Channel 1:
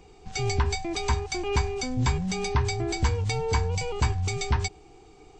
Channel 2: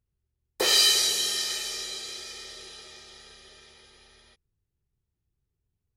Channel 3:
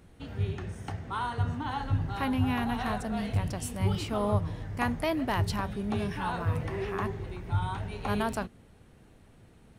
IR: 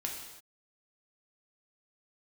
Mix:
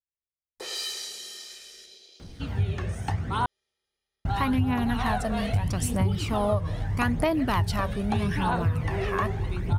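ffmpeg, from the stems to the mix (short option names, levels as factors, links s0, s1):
-filter_complex "[1:a]afwtdn=0.01,volume=0.211,asplit=2[s0][s1];[s1]volume=0.355[s2];[2:a]acontrast=71,aphaser=in_gain=1:out_gain=1:delay=1.9:decay=0.49:speed=0.79:type=triangular,adelay=2200,volume=0.944,asplit=3[s3][s4][s5];[s3]atrim=end=3.46,asetpts=PTS-STARTPTS,afade=t=out:st=3.456:d=0.004:c=hsin[s6];[s4]atrim=start=3.46:end=4.25,asetpts=PTS-STARTPTS,volume=0[s7];[s5]atrim=start=4.25,asetpts=PTS-STARTPTS,afade=t=in:d=0.004:c=hsin[s8];[s6][s7][s8]concat=n=3:v=0:a=1[s9];[s2]aecho=0:1:105|210|315|420|525|630|735:1|0.49|0.24|0.118|0.0576|0.0282|0.0138[s10];[s0][s9][s10]amix=inputs=3:normalize=0,acompressor=threshold=0.0891:ratio=6"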